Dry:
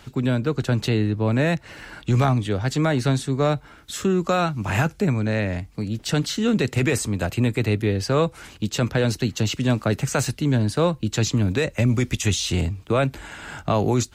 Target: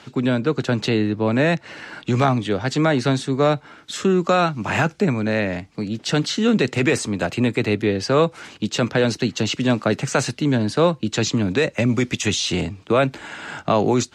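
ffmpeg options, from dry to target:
-af "highpass=170,lowpass=6.6k,volume=4dB"

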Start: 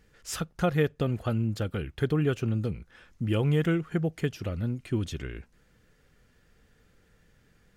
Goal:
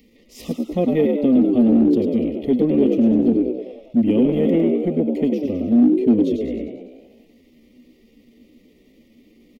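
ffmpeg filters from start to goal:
-filter_complex "[0:a]asuperstop=centerf=1500:order=20:qfactor=2.4,equalizer=f=240:t=o:w=0.34:g=14.5,asplit=8[a][b][c][d][e][f][g][h];[b]adelay=81,afreqshift=67,volume=-5.5dB[i];[c]adelay=162,afreqshift=134,volume=-10.5dB[j];[d]adelay=243,afreqshift=201,volume=-15.6dB[k];[e]adelay=324,afreqshift=268,volume=-20.6dB[l];[f]adelay=405,afreqshift=335,volume=-25.6dB[m];[g]adelay=486,afreqshift=402,volume=-30.7dB[n];[h]adelay=567,afreqshift=469,volume=-35.7dB[o];[a][i][j][k][l][m][n][o]amix=inputs=8:normalize=0,acrossover=split=420|1700[p][q][r];[p]asoftclip=type=hard:threshold=-21.5dB[s];[r]acompressor=mode=upward:threshold=-52dB:ratio=2.5[t];[s][q][t]amix=inputs=3:normalize=0,atempo=0.81,equalizer=f=125:t=o:w=1:g=-10,equalizer=f=250:t=o:w=1:g=12,equalizer=f=500:t=o:w=1:g=7,equalizer=f=1k:t=o:w=1:g=-8,equalizer=f=8k:t=o:w=1:g=-12"

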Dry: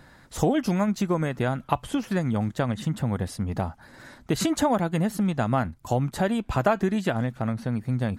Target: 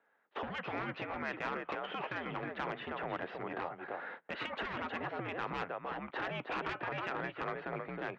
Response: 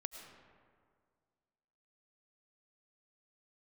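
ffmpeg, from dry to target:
-filter_complex "[0:a]alimiter=limit=-18.5dB:level=0:latency=1:release=149,asplit=2[a][b];[b]aecho=0:1:315:0.376[c];[a][c]amix=inputs=2:normalize=0,highpass=f=420:t=q:w=0.5412,highpass=f=420:t=q:w=1.307,lowpass=f=2.9k:t=q:w=0.5176,lowpass=f=2.9k:t=q:w=0.7071,lowpass=f=2.9k:t=q:w=1.932,afreqshift=-74,agate=range=-22dB:threshold=-49dB:ratio=16:detection=peak,asoftclip=type=tanh:threshold=-27dB,afftfilt=real='re*lt(hypot(re,im),0.0708)':imag='im*lt(hypot(re,im),0.0708)':win_size=1024:overlap=0.75,volume=3dB"

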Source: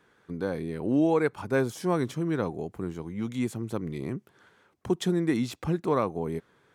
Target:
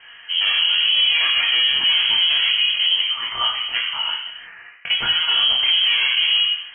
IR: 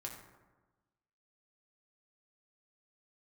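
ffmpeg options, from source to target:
-filter_complex "[0:a]asettb=1/sr,asplit=3[a][b][c];[a]atrim=end=2.984[d];[b]atrim=start=2.98:end=5.29,asetpts=PTS-STARTPTS,afade=t=in:d=0.004:c=qsin,afade=t=out:st=2.306:d=0.004:c=qsin,highpass=640[e];[c]atrim=start=5.286[f];[d][e]acrossfade=d=0.004:c1=hsin:c2=qsin[g];[g][f]acrossfade=d=0.004:c1=qsin:c2=hsin,acompressor=threshold=-25dB:ratio=6,aeval=exprs='clip(val(0),-1,0.00794)':c=same,flanger=delay=20:depth=4.2:speed=0.43[h];[1:a]atrim=start_sample=2205,afade=t=out:st=0.35:d=0.01,atrim=end_sample=15876[i];[h][i]afir=irnorm=-1:irlink=0,lowpass=f=2.8k:t=q:w=0.5098,lowpass=f=2.8k:t=q:w=0.6013,lowpass=f=2.8k:t=q:w=0.9,lowpass=f=2.8k:t=q:w=2.563,afreqshift=-3300,alimiter=level_in=35dB:limit=-1dB:release=50:level=0:latency=1,volume=-8.5dB"

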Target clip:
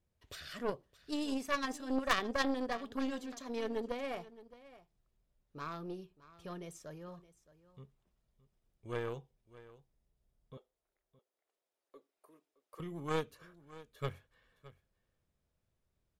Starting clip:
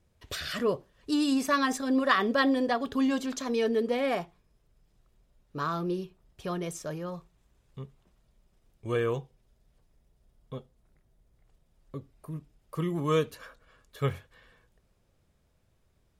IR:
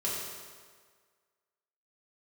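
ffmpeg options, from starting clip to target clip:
-filter_complex "[0:a]asettb=1/sr,asplit=3[a][b][c];[a]atrim=end=10.574[d];[b]atrim=start=10.57:end=12.8,asetpts=PTS-STARTPTS,afade=t=in:d=0.004:c=qsin,afade=t=out:st=2.226:d=0.004:c=qsin,highpass=f=370:w=0.5412,highpass=f=370:w=1.3066[e];[c]atrim=start=12.796[f];[d][e]acrossfade=d=0.004:c1=hsin:c2=qsin[g];[g][f]acrossfade=d=0.004:c1=qsin:c2=hsin,aeval=exprs='0.299*(cos(1*acos(clip(val(0)/0.299,-1,1)))-cos(1*PI/2))+0.0668*(cos(3*acos(clip(val(0)/0.299,-1,1)))-cos(3*PI/2))+0.0422*(cos(6*acos(clip(val(0)/0.299,-1,1)))-cos(6*PI/2))+0.0211*(cos(8*acos(clip(val(0)/0.299,-1,1)))-cos(8*PI/2))':c=same,aecho=1:1:617:0.126,volume=-3dB"

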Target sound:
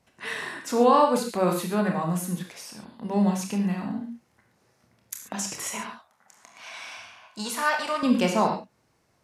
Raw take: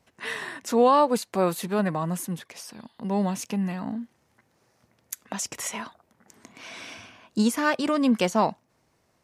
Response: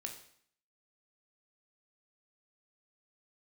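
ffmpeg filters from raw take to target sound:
-filter_complex "[0:a]asettb=1/sr,asplit=3[a][b][c];[a]atrim=end=5.844[d];[b]atrim=start=5.84:end=8.03,asetpts=PTS-STARTPTS,afade=t=in:d=0.004:c=qsin,afade=t=out:st=2.186:d=0.004:c=qsin,lowshelf=f=520:t=q:w=1.5:g=-12.5[e];[c]atrim=start=8.026[f];[d][e]acrossfade=d=0.004:c1=hsin:c2=qsin[g];[g][f]acrossfade=d=0.004:c1=qsin:c2=hsin[h];[1:a]atrim=start_sample=2205,atrim=end_sample=3969,asetrate=26901,aresample=44100[i];[h][i]afir=irnorm=-1:irlink=0"

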